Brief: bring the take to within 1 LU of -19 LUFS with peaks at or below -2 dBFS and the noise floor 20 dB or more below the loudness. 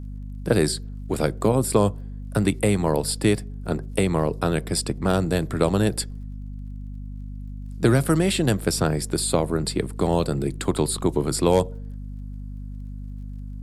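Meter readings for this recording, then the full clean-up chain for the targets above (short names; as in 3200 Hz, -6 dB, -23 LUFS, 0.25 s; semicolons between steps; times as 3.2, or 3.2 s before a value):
ticks 38/s; hum 50 Hz; harmonics up to 250 Hz; hum level -32 dBFS; loudness -23.0 LUFS; peak -5.0 dBFS; loudness target -19.0 LUFS
-> de-click; de-hum 50 Hz, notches 5; gain +4 dB; limiter -2 dBFS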